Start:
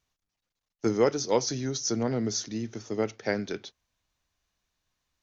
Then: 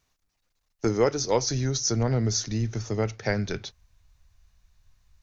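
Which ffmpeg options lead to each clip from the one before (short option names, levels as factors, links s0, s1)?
-filter_complex "[0:a]equalizer=f=3200:w=4.8:g=-4,asplit=2[s0][s1];[s1]acompressor=threshold=0.02:ratio=6,volume=1.26[s2];[s0][s2]amix=inputs=2:normalize=0,asubboost=boost=11.5:cutoff=91"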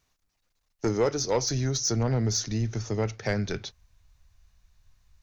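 -af "asoftclip=type=tanh:threshold=0.158"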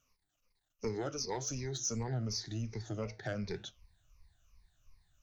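-af "afftfilt=real='re*pow(10,16/40*sin(2*PI*(0.87*log(max(b,1)*sr/1024/100)/log(2)-(-2.7)*(pts-256)/sr)))':imag='im*pow(10,16/40*sin(2*PI*(0.87*log(max(b,1)*sr/1024/100)/log(2)-(-2.7)*(pts-256)/sr)))':win_size=1024:overlap=0.75,acompressor=threshold=0.0126:ratio=1.5,flanger=delay=7:depth=3.1:regen=-86:speed=1.9:shape=sinusoidal,volume=0.75"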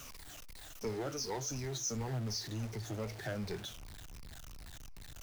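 -filter_complex "[0:a]aeval=exprs='val(0)+0.5*0.00944*sgn(val(0))':c=same,acrossover=split=120|1600[s0][s1][s2];[s0]acrusher=samples=37:mix=1:aa=0.000001:lfo=1:lforange=59.2:lforate=3.5[s3];[s3][s1][s2]amix=inputs=3:normalize=0,volume=0.708"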